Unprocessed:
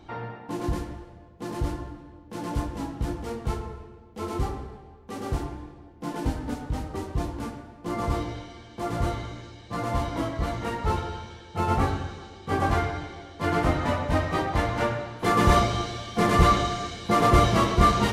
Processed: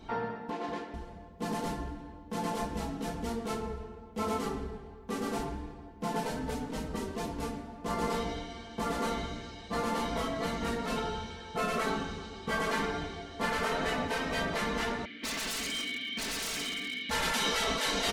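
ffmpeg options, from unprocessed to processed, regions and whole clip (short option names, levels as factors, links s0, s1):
-filter_complex "[0:a]asettb=1/sr,asplit=3[s0][s1][s2];[s0]atrim=end=0.504[s3];[s1]atrim=start=0.5:end=0.94,asetpts=PTS-STARTPTS,afade=t=in:d=0.004:c=qsin,afade=t=out:st=0.436:d=0.004:c=qsin,acrusher=bits=8:mode=log:mix=0:aa=0.000001,highpass=390,lowpass=3300[s4];[s2]atrim=start=0.936[s5];[s3][s4]acrossfade=d=0.004:c1=hsin:c2=qsin[s6];[s6][s5]acrossfade=d=0.004:c1=qsin:c2=hsin,asettb=1/sr,asplit=3[s7][s8][s9];[s7]atrim=end=15.054[s10];[s8]atrim=start=15.05:end=17.11,asetpts=PTS-STARTPTS,afade=t=in:d=0.004:c=qsin,afade=t=out:st=2.056:d=0.004:c=qsin,asplit=3[s11][s12][s13];[s11]bandpass=f=270:t=q:w=8,volume=1[s14];[s12]bandpass=f=2290:t=q:w=8,volume=0.501[s15];[s13]bandpass=f=3010:t=q:w=8,volume=0.355[s16];[s14][s15][s16]amix=inputs=3:normalize=0,equalizer=f=2000:w=0.32:g=15,aeval=exprs='0.0266*(abs(mod(val(0)/0.0266+3,4)-2)-1)':c=same[s17];[s9]atrim=start=17.106[s18];[s10][s17]acrossfade=d=0.004:c1=hsin:c2=qsin[s19];[s19][s18]acrossfade=d=0.004:c1=qsin:c2=hsin,afftfilt=real='re*lt(hypot(re,im),0.178)':imag='im*lt(hypot(re,im),0.178)':win_size=1024:overlap=0.75,adynamicequalizer=threshold=0.00447:dfrequency=1000:dqfactor=1:tfrequency=1000:tqfactor=1:attack=5:release=100:ratio=0.375:range=2.5:mode=cutabove:tftype=bell,aecho=1:1:4.5:0.65"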